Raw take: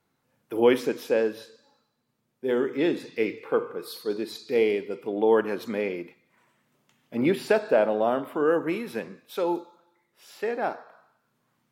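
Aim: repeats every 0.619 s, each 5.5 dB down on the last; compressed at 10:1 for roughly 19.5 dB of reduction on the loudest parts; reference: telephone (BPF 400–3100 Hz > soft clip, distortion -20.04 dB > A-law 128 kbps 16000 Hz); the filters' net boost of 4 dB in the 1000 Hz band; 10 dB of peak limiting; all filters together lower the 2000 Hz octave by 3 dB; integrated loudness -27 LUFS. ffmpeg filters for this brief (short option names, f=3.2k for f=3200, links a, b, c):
-af "equalizer=f=1k:t=o:g=7,equalizer=f=2k:t=o:g=-6,acompressor=threshold=-34dB:ratio=10,alimiter=level_in=6.5dB:limit=-24dB:level=0:latency=1,volume=-6.5dB,highpass=400,lowpass=3.1k,aecho=1:1:619|1238|1857|2476|3095|3714|4333:0.531|0.281|0.149|0.079|0.0419|0.0222|0.0118,asoftclip=threshold=-33.5dB,volume=18dB" -ar 16000 -c:a pcm_alaw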